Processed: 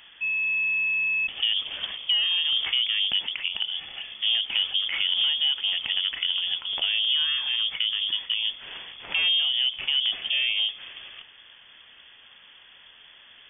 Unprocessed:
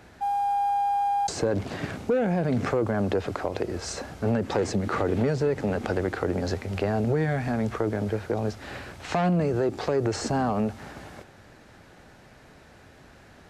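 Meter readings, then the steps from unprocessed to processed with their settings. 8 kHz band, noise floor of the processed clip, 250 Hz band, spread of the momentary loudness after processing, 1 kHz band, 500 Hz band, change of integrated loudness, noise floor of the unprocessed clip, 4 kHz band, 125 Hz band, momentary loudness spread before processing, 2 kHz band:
under -40 dB, -52 dBFS, under -30 dB, 8 LU, -21.0 dB, under -25 dB, +3.5 dB, -52 dBFS, +23.5 dB, under -30 dB, 8 LU, +9.5 dB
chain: dynamic bell 1.8 kHz, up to -6 dB, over -50 dBFS, Q 2.1; frequency inversion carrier 3.4 kHz

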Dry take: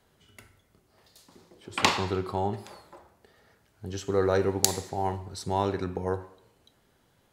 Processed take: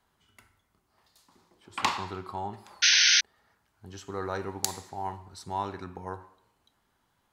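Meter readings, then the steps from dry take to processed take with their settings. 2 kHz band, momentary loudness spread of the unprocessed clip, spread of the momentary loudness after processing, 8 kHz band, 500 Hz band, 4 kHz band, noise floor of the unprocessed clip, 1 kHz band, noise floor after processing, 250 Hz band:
+6.5 dB, 13 LU, 22 LU, +4.5 dB, -11.0 dB, +8.5 dB, -67 dBFS, -2.5 dB, -74 dBFS, -9.0 dB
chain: graphic EQ 125/500/1000 Hz -4/-7/+7 dB; painted sound noise, 2.82–3.21 s, 1.4–6.4 kHz -14 dBFS; trim -6.5 dB

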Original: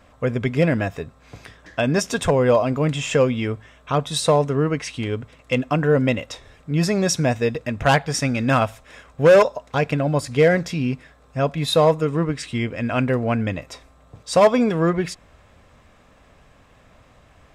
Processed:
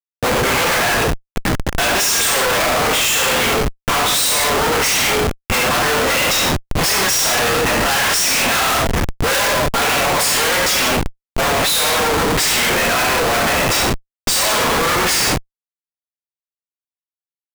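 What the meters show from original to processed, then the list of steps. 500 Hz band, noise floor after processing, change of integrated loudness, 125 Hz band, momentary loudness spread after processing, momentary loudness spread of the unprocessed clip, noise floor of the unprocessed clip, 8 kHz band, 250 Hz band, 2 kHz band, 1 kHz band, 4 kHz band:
-1.0 dB, under -85 dBFS, +5.5 dB, -3.0 dB, 5 LU, 11 LU, -53 dBFS, +16.5 dB, -2.0 dB, +11.5 dB, +8.0 dB, +14.5 dB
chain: waveshaping leveller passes 5; high-pass 980 Hz 12 dB/octave; treble shelf 6.7 kHz +11.5 dB; gated-style reverb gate 280 ms falling, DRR -6.5 dB; Schmitt trigger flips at -14 dBFS; trim -6 dB

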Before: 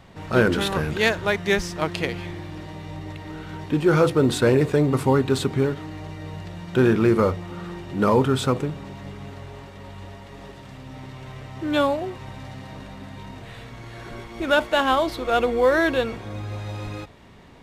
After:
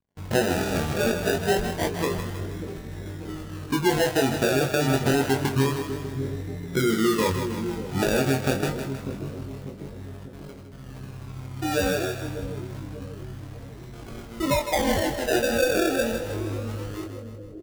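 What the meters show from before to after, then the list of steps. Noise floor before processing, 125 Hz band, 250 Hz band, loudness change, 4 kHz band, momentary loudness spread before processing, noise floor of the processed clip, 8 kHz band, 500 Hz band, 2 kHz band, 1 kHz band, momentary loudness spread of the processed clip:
-43 dBFS, -2.5 dB, -2.5 dB, -3.5 dB, -0.5 dB, 21 LU, -41 dBFS, +5.5 dB, -3.0 dB, -2.5 dB, -3.5 dB, 18 LU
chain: resonances exaggerated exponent 2; low-pass 1.9 kHz 24 dB/octave; compression, threshold -20 dBFS, peak gain reduction 8 dB; crossover distortion -46.5 dBFS; gate with hold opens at -35 dBFS; decimation with a swept rate 33×, swing 60% 0.27 Hz; doubling 22 ms -4.5 dB; two-band feedback delay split 480 Hz, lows 593 ms, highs 158 ms, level -8 dB

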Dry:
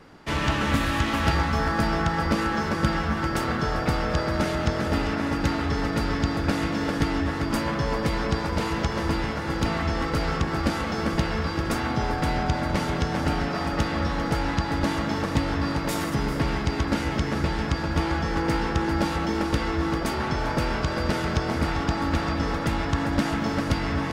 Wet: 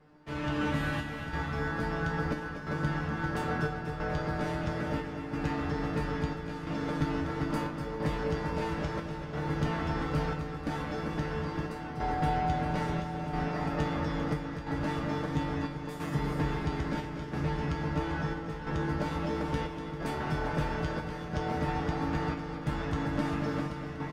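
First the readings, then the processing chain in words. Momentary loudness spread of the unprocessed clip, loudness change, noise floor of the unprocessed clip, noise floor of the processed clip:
2 LU, -7.5 dB, -29 dBFS, -39 dBFS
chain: treble shelf 2.5 kHz -9.5 dB; in parallel at +0.5 dB: peak limiter -16.5 dBFS, peak gain reduction 8 dB; on the sum: level rider; square tremolo 0.75 Hz, depth 60%, duty 75%; feedback comb 150 Hz, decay 0.3 s, harmonics all, mix 90%; on a send: feedback delay 243 ms, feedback 52%, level -9.5 dB; on the sum: trim -6.5 dB

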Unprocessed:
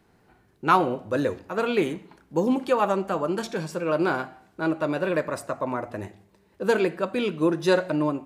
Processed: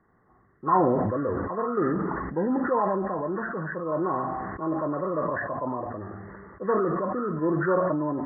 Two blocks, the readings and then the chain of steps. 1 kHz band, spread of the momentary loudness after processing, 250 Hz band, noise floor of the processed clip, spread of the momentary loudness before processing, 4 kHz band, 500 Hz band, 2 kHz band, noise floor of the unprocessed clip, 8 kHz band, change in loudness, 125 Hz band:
0.0 dB, 9 LU, -1.0 dB, -62 dBFS, 9 LU, under -40 dB, -2.0 dB, -4.5 dB, -62 dBFS, under -35 dB, -1.5 dB, +1.0 dB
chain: knee-point frequency compression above 1 kHz 4:1; decay stretcher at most 22 dB/s; trim -4.5 dB

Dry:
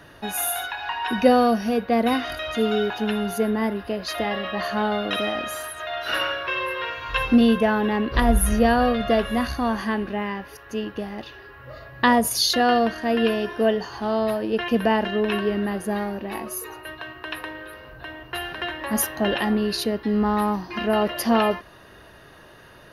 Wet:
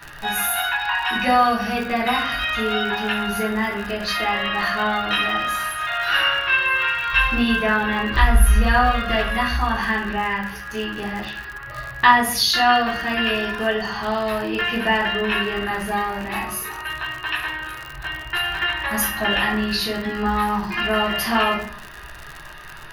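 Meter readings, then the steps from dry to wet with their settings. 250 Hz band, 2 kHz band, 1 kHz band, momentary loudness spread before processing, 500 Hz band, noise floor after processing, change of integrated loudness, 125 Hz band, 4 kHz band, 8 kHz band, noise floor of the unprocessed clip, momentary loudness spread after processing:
-3.5 dB, +8.5 dB, +4.5 dB, 14 LU, -3.5 dB, -37 dBFS, +2.5 dB, +4.5 dB, +6.0 dB, +0.5 dB, -48 dBFS, 12 LU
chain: graphic EQ 125/250/500/2000/8000 Hz -3/-10/-11/+4/-8 dB; simulated room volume 53 m³, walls mixed, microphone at 1.2 m; crackle 86 per s -29 dBFS; in parallel at 0 dB: compression, threshold -25 dBFS, peak gain reduction 17.5 dB; on the sum: trim -3 dB

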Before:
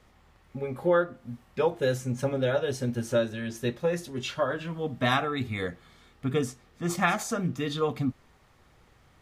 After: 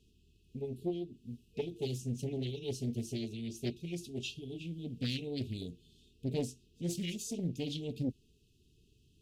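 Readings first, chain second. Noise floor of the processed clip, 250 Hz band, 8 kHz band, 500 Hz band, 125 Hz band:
-68 dBFS, -6.5 dB, -6.5 dB, -13.5 dB, -6.0 dB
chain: Chebyshev shaper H 5 -29 dB, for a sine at -10.5 dBFS; FFT band-reject 460–2500 Hz; loudspeaker Doppler distortion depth 0.46 ms; trim -7 dB

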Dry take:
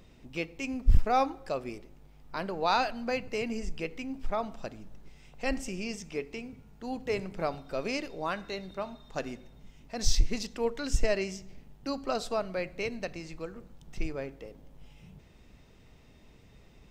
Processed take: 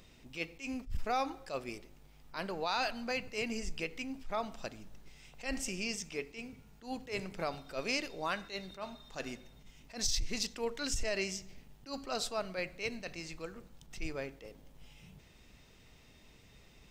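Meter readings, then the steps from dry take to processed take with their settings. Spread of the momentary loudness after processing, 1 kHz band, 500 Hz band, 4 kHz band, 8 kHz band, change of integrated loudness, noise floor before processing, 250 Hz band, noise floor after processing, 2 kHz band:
17 LU, -6.5 dB, -6.5 dB, 0.0 dB, +0.5 dB, -4.5 dB, -57 dBFS, -5.5 dB, -60 dBFS, -1.5 dB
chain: peak limiter -22.5 dBFS, peak gain reduction 11.5 dB; tilt shelf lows -4.5 dB, about 1.5 kHz; attacks held to a fixed rise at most 200 dB/s

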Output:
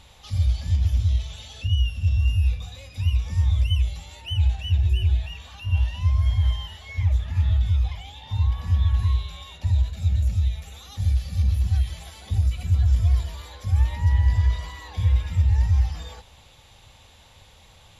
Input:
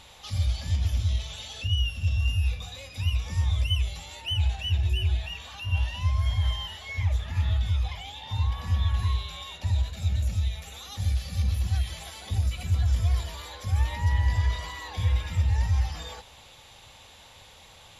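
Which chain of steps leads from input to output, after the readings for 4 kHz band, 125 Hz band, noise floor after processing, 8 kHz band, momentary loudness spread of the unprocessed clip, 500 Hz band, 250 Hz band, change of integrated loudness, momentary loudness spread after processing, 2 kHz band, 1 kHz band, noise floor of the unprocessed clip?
-3.0 dB, +4.5 dB, -52 dBFS, -3.0 dB, 10 LU, -2.0 dB, +1.5 dB, +4.5 dB, 12 LU, -3.0 dB, -2.5 dB, -51 dBFS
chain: bass shelf 190 Hz +9 dB; trim -3 dB

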